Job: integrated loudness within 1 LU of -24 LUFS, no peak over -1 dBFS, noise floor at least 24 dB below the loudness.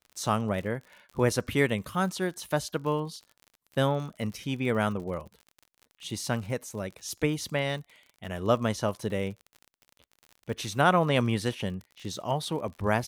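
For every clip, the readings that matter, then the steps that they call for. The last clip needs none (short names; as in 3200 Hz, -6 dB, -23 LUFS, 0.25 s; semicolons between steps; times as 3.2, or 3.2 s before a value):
ticks 45/s; loudness -30.0 LUFS; peak -9.0 dBFS; loudness target -24.0 LUFS
-> de-click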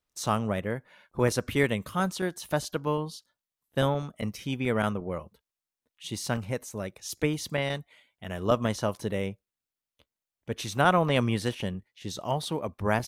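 ticks 0.23/s; loudness -30.0 LUFS; peak -9.0 dBFS; loudness target -24.0 LUFS
-> gain +6 dB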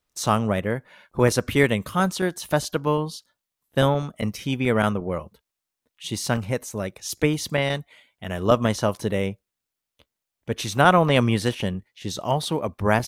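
loudness -24.0 LUFS; peak -3.0 dBFS; noise floor -85 dBFS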